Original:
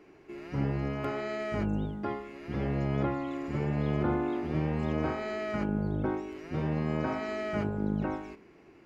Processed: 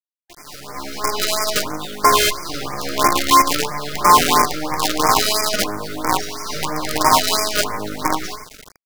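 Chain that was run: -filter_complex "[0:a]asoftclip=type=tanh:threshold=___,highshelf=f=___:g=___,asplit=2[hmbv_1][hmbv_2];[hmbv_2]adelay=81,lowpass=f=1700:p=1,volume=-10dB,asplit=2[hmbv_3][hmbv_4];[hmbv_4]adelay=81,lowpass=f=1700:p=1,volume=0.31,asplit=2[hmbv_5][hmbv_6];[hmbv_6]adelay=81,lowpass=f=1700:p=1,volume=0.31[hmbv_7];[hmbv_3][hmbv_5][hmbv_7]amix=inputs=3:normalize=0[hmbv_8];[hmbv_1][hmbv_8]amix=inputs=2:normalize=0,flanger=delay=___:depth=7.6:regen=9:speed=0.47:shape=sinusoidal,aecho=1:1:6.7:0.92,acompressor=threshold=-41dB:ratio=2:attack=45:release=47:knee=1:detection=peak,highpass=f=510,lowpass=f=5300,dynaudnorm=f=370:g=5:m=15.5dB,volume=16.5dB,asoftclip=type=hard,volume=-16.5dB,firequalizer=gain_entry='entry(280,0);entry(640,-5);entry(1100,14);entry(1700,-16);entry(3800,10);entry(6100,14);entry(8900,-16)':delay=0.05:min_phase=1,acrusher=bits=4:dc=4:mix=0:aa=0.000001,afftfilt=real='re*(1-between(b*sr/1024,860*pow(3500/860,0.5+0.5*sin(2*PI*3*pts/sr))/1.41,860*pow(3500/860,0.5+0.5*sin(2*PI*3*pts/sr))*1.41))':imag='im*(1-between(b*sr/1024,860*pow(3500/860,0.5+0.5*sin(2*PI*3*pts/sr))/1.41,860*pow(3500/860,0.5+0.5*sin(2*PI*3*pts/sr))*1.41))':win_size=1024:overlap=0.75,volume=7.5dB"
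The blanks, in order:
-20.5dB, 3600, 11.5, 4.4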